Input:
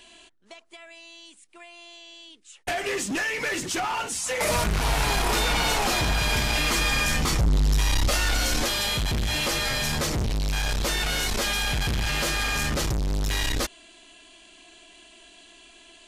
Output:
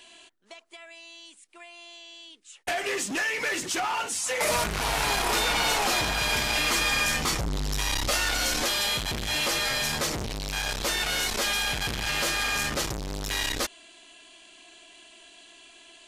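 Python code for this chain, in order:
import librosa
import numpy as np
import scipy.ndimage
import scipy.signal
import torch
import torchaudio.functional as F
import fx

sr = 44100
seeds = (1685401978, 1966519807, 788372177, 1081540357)

y = fx.low_shelf(x, sr, hz=210.0, db=-10.5)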